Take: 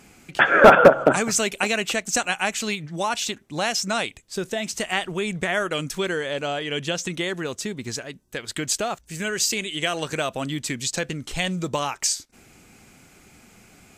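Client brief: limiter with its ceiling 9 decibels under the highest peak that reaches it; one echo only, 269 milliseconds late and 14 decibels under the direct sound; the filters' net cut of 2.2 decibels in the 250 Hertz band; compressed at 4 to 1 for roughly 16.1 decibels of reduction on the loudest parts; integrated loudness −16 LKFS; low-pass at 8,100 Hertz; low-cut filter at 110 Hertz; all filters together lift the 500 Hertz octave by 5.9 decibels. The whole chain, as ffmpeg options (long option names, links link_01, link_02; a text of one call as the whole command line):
ffmpeg -i in.wav -af "highpass=110,lowpass=8100,equalizer=frequency=250:width_type=o:gain=-6,equalizer=frequency=500:width_type=o:gain=8.5,acompressor=threshold=-21dB:ratio=4,alimiter=limit=-16dB:level=0:latency=1,aecho=1:1:269:0.2,volume=11.5dB" out.wav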